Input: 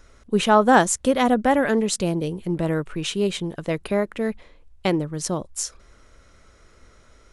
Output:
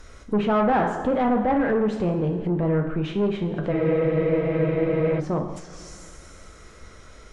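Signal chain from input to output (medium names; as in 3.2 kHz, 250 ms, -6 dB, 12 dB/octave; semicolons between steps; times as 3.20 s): two-slope reverb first 0.72 s, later 2.7 s, DRR 3.5 dB; in parallel at -1 dB: compression, threshold -30 dBFS, peak gain reduction 19.5 dB; on the sum: saturation -16.5 dBFS, distortion -9 dB; low-pass that closes with the level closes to 1.5 kHz, closed at -22.5 dBFS; spectral freeze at 3.74 s, 1.46 s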